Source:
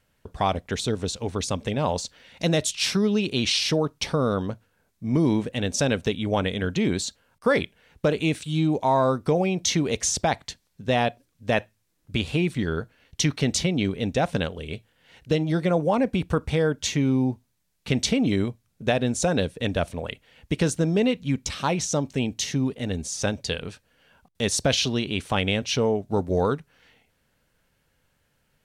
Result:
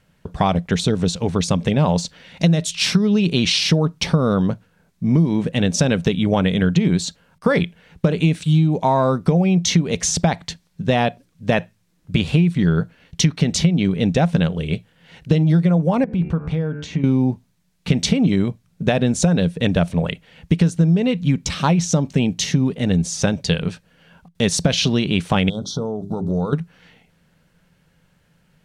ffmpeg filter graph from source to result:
-filter_complex "[0:a]asettb=1/sr,asplit=3[s0][s1][s2];[s0]atrim=end=16.044[s3];[s1]atrim=start=16.04:end=17.04,asetpts=PTS-STARTPTS,afade=t=in:d=0.004:c=qsin,afade=t=out:st=0.996:d=0.004:c=qsin,bandreject=f=74.06:t=h:w=4,bandreject=f=148.12:t=h:w=4,bandreject=f=222.18:t=h:w=4,bandreject=f=296.24:t=h:w=4,bandreject=f=370.3:t=h:w=4,bandreject=f=444.36:t=h:w=4,bandreject=f=518.42:t=h:w=4,bandreject=f=592.48:t=h:w=4,bandreject=f=666.54:t=h:w=4,bandreject=f=740.6:t=h:w=4,bandreject=f=814.66:t=h:w=4,bandreject=f=888.72:t=h:w=4,bandreject=f=962.78:t=h:w=4,bandreject=f=1036.84:t=h:w=4,bandreject=f=1110.9:t=h:w=4,bandreject=f=1184.96:t=h:w=4,bandreject=f=1259.02:t=h:w=4,bandreject=f=1333.08:t=h:w=4,bandreject=f=1407.14:t=h:w=4,bandreject=f=1481.2:t=h:w=4,bandreject=f=1555.26:t=h:w=4,bandreject=f=1629.32:t=h:w=4,bandreject=f=1703.38:t=h:w=4,bandreject=f=1777.44:t=h:w=4,bandreject=f=1851.5:t=h:w=4,bandreject=f=1925.56:t=h:w=4,bandreject=f=1999.62:t=h:w=4,bandreject=f=2073.68:t=h:w=4,bandreject=f=2147.74:t=h:w=4,bandreject=f=2221.8:t=h:w=4,bandreject=f=2295.86:t=h:w=4,bandreject=f=2369.92:t=h:w=4,bandreject=f=2443.98:t=h:w=4,bandreject=f=2518.04:t=h:w=4,bandreject=f=2592.1:t=h:w=4,bandreject=f=2666.16:t=h:w=4,bandreject=f=2740.22:t=h:w=4,bandreject=f=2814.28:t=h:w=4,acompressor=threshold=0.0251:ratio=4:attack=3.2:release=140:knee=1:detection=peak,aemphasis=mode=reproduction:type=75kf[s4];[s2]atrim=start=17.036[s5];[s3][s4]acrossfade=d=0.004:c1=hsin:c2=qsin[s6];[s6][s5]acrossfade=d=0.004:c1=qsin:c2=hsin,asettb=1/sr,asplit=3[s7][s8][s9];[s7]atrim=end=25.494[s10];[s8]atrim=start=25.49:end=26.53,asetpts=PTS-STARTPTS,afade=t=in:d=0.004:c=qsin,afade=t=out:st=1.036:d=0.004:c=qsin,bandreject=f=50:t=h:w=6,bandreject=f=100:t=h:w=6,bandreject=f=150:t=h:w=6,bandreject=f=200:t=h:w=6,bandreject=f=250:t=h:w=6,bandreject=f=300:t=h:w=6,bandreject=f=350:t=h:w=6,bandreject=f=400:t=h:w=6,acompressor=threshold=0.0316:ratio=5:attack=3.2:release=140:knee=1:detection=peak,asuperstop=centerf=2200:order=20:qfactor=1.2[s11];[s9]atrim=start=26.526[s12];[s10][s11]acrossfade=d=0.004:c1=hsin:c2=qsin[s13];[s13][s12]acrossfade=d=0.004:c1=qsin:c2=hsin,equalizer=f=170:t=o:w=0.36:g=14.5,acompressor=threshold=0.112:ratio=12,highshelf=f=9200:g=-8,volume=2.24"

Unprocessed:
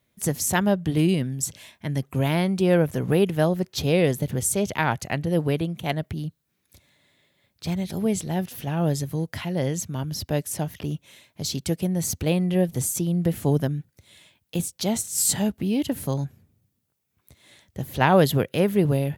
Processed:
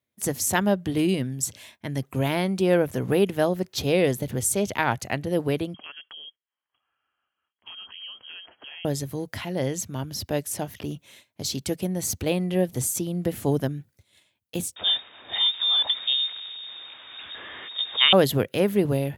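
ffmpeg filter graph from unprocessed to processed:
-filter_complex "[0:a]asettb=1/sr,asplit=3[s0][s1][s2];[s0]atrim=end=5.744[s3];[s1]atrim=start=5.74:end=8.85,asetpts=PTS-STARTPTS,afade=t=in:d=0.004:c=qsin,afade=t=out:st=3.106:d=0.004:c=qsin,highpass=f=480:p=1,acompressor=threshold=0.0141:ratio=5:attack=3.2:release=140:knee=1:detection=peak,lowpass=f=2900:t=q:w=0.5098,lowpass=f=2900:t=q:w=0.6013,lowpass=f=2900:t=q:w=0.9,lowpass=f=2900:t=q:w=2.563,afreqshift=-3400[s4];[s2]atrim=start=8.846[s5];[s3][s4]acrossfade=d=0.004:c1=hsin:c2=qsin[s6];[s6][s5]acrossfade=d=0.004:c1=qsin:c2=hsin,asettb=1/sr,asplit=3[s7][s8][s9];[s7]atrim=end=14.764[s10];[s8]atrim=start=14.76:end=18.13,asetpts=PTS-STARTPTS,afade=t=in:d=0.004:c=qsin,afade=t=out:st=3.366:d=0.004:c=qsin,aeval=exprs='val(0)+0.5*0.0266*sgn(val(0))':c=same,lowpass=f=3200:t=q:w=0.5098,lowpass=f=3200:t=q:w=0.6013,lowpass=f=3200:t=q:w=0.9,lowpass=f=3200:t=q:w=2.563,afreqshift=-3800[s11];[s9]atrim=start=18.126[s12];[s10][s11]acrossfade=d=0.004:c1=hsin:c2=qsin[s13];[s13][s12]acrossfade=d=0.004:c1=qsin:c2=hsin,agate=range=0.251:threshold=0.00316:ratio=16:detection=peak,highpass=74,equalizer=f=160:w=6.8:g=-12.5"

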